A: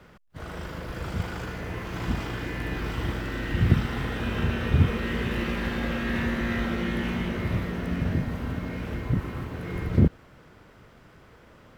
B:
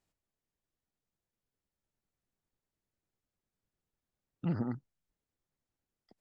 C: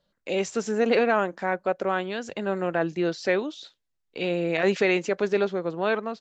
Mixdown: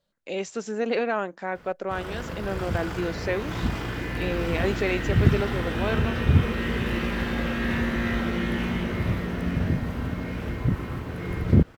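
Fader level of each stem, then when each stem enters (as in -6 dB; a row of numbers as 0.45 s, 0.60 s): +1.5 dB, -3.5 dB, -4.0 dB; 1.55 s, 0.00 s, 0.00 s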